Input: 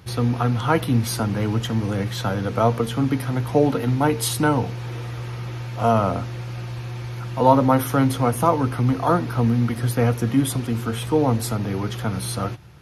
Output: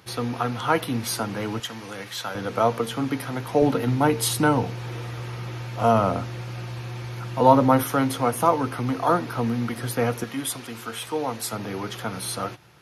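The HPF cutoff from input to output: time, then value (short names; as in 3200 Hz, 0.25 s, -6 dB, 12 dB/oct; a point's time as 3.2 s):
HPF 6 dB/oct
400 Hz
from 1.6 s 1300 Hz
from 2.35 s 360 Hz
from 3.62 s 120 Hz
from 7.83 s 320 Hz
from 10.24 s 1000 Hz
from 11.53 s 400 Hz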